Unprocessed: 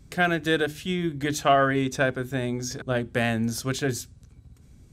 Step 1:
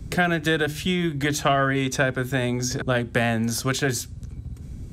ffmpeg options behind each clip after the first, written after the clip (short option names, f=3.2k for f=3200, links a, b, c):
-filter_complex "[0:a]lowshelf=f=440:g=8.5,acrossover=split=210|650|1300[a][b][c][d];[a]acompressor=threshold=-37dB:ratio=4[e];[b]acompressor=threshold=-38dB:ratio=4[f];[c]acompressor=threshold=-34dB:ratio=4[g];[d]acompressor=threshold=-33dB:ratio=4[h];[e][f][g][h]amix=inputs=4:normalize=0,volume=7.5dB"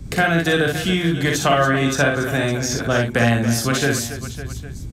-af "aecho=1:1:42|60|280|558|811:0.473|0.631|0.266|0.211|0.112,volume=2.5dB"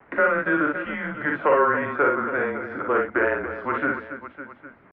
-filter_complex "[0:a]asplit=2[a][b];[b]volume=18dB,asoftclip=hard,volume=-18dB,volume=-5dB[c];[a][c]amix=inputs=2:normalize=0,acrusher=bits=6:mix=0:aa=0.000001,highpass=f=470:t=q:w=0.5412,highpass=f=470:t=q:w=1.307,lowpass=f=2.1k:t=q:w=0.5176,lowpass=f=2.1k:t=q:w=0.7071,lowpass=f=2.1k:t=q:w=1.932,afreqshift=-150,volume=-3dB"